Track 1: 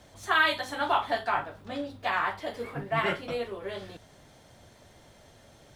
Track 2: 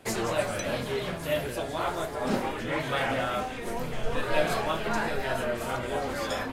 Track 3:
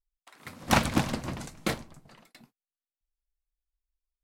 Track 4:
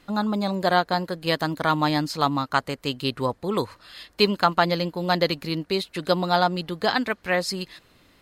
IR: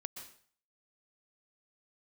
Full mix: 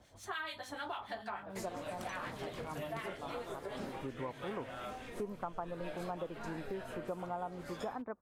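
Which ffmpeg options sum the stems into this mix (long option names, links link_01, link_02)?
-filter_complex "[0:a]acrossover=split=1300[link_01][link_02];[link_01]aeval=exprs='val(0)*(1-0.7/2+0.7/2*cos(2*PI*6.8*n/s))':channel_layout=same[link_03];[link_02]aeval=exprs='val(0)*(1-0.7/2-0.7/2*cos(2*PI*6.8*n/s))':channel_layout=same[link_04];[link_03][link_04]amix=inputs=2:normalize=0,volume=-5dB,asplit=2[link_05][link_06];[1:a]adelay=1500,volume=-11.5dB[link_07];[2:a]acompressor=threshold=-31dB:ratio=6,adelay=1300,volume=-11.5dB[link_08];[3:a]lowpass=frequency=1100:width=0.5412,lowpass=frequency=1100:width=1.3066,lowshelf=frequency=360:gain=-5.5,adelay=1000,volume=-4.5dB[link_09];[link_06]apad=whole_len=406596[link_10];[link_09][link_10]sidechaincompress=threshold=-55dB:ratio=8:attack=16:release=214[link_11];[link_05][link_07][link_08][link_11]amix=inputs=4:normalize=0,acompressor=threshold=-39dB:ratio=4"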